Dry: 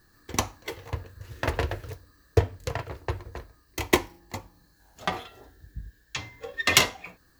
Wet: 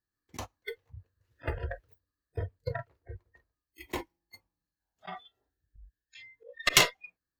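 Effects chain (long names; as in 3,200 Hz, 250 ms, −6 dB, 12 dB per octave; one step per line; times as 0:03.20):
noise reduction from a noise print of the clip's start 30 dB
volume swells 113 ms
harmonic generator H 8 −26 dB, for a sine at −4.5 dBFS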